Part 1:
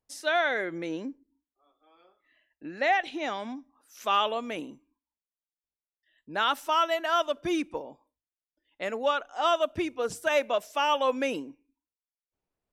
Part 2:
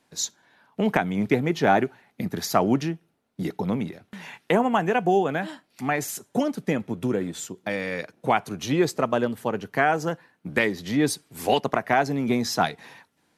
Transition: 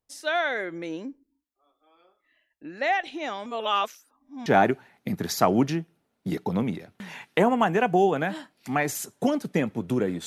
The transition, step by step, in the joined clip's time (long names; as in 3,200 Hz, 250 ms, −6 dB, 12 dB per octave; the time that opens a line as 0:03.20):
part 1
0:03.46–0:04.46: reverse
0:04.46: continue with part 2 from 0:01.59